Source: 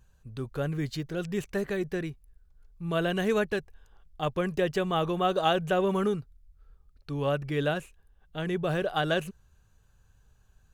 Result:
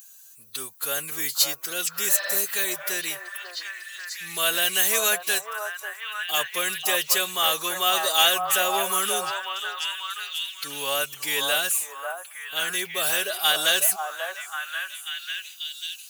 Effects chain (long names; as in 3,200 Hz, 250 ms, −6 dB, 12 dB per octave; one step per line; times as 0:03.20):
RIAA equalisation recording
phase-vocoder stretch with locked phases 1.5×
high-pass filter 70 Hz
spectral tilt +4.5 dB per octave
in parallel at −5 dB: soft clipping −27 dBFS, distortion −7 dB
on the sum: healed spectral selection 0:02.12–0:02.34, 520–5,500 Hz after
on a send: echo through a band-pass that steps 541 ms, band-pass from 840 Hz, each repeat 0.7 octaves, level −1 dB